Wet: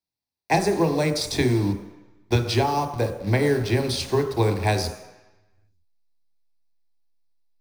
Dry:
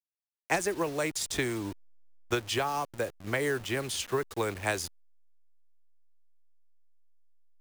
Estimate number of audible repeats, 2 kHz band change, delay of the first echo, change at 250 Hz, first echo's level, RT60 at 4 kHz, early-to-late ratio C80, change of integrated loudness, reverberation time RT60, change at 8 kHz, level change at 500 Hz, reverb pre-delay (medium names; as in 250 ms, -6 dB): no echo, +2.5 dB, no echo, +11.0 dB, no echo, 1.0 s, 10.5 dB, +8.5 dB, 1.0 s, +1.0 dB, +8.5 dB, 23 ms